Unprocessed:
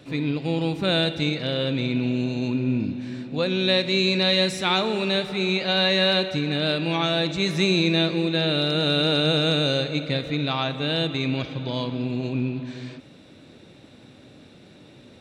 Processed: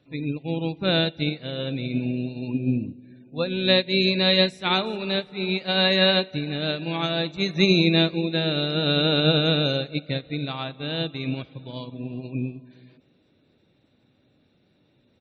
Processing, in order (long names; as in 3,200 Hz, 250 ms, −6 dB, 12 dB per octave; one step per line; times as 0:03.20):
gate on every frequency bin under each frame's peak −30 dB strong
low-shelf EQ 130 Hz +4 dB
on a send: echo with shifted repeats 360 ms, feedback 50%, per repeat +57 Hz, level −24 dB
on the sum: expander for the loud parts 2.5 to 1, over −31 dBFS
level +3.5 dB